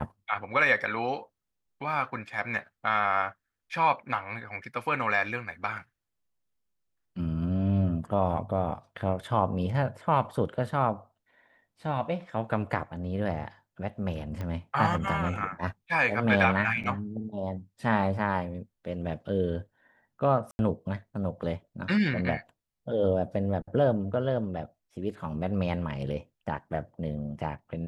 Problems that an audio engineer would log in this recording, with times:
0:14.41: click −23 dBFS
0:16.83–0:16.84: drop-out 7.1 ms
0:20.51–0:20.59: drop-out 81 ms

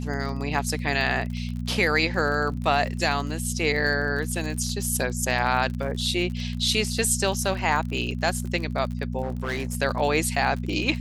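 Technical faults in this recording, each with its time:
surface crackle 40 per second −31 dBFS
mains hum 60 Hz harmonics 4 −30 dBFS
0:09.22–0:09.75: clipping −24 dBFS

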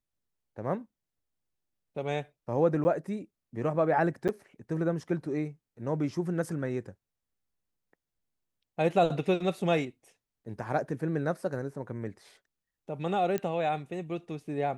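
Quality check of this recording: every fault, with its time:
0:02.84–0:02.85: drop-out 10 ms
0:04.28–0:04.29: drop-out 8 ms
0:13.38: click −18 dBFS

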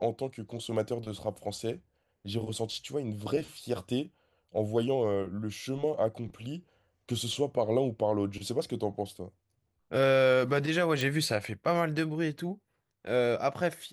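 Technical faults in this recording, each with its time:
0:11.01: click

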